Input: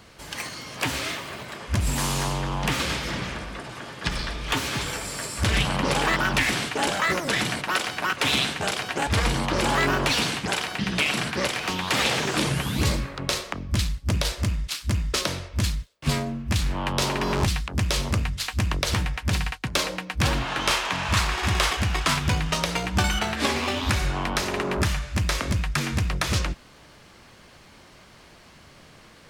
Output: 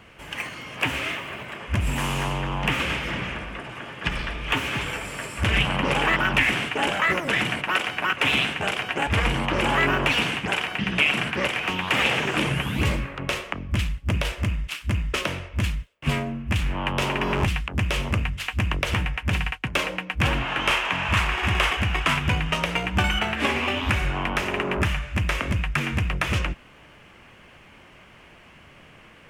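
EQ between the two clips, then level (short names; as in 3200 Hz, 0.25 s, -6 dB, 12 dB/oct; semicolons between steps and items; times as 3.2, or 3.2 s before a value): resonant high shelf 3400 Hz -6.5 dB, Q 3; 0.0 dB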